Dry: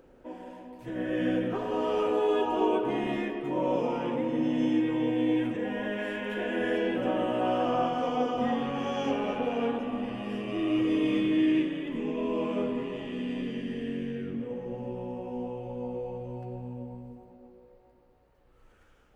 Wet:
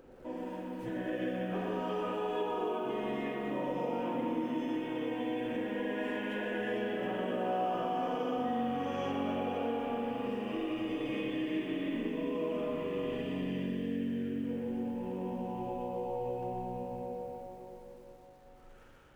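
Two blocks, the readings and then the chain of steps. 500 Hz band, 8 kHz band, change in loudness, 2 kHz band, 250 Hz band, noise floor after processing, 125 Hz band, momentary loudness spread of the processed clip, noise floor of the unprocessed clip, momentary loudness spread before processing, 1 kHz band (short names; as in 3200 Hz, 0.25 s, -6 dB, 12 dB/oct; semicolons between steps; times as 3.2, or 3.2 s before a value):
-5.0 dB, n/a, -5.5 dB, -4.5 dB, -6.5 dB, -55 dBFS, -4.0 dB, 6 LU, -61 dBFS, 11 LU, -3.5 dB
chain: spring tank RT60 3.5 s, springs 43/47 ms, chirp 35 ms, DRR -1.5 dB; compressor 3:1, threshold -35 dBFS, peak gain reduction 12.5 dB; lo-fi delay 0.119 s, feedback 55%, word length 10-bit, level -10.5 dB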